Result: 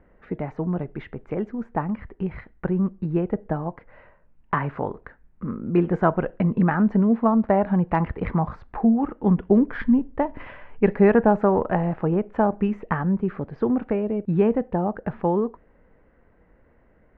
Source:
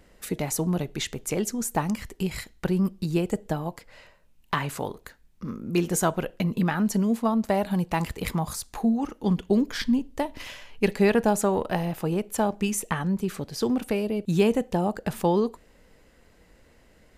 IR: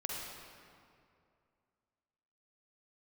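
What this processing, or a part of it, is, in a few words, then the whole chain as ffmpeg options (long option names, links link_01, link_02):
action camera in a waterproof case: -af "lowpass=frequency=1800:width=0.5412,lowpass=frequency=1800:width=1.3066,dynaudnorm=framelen=460:gausssize=17:maxgain=5dB" -ar 48000 -c:a aac -b:a 128k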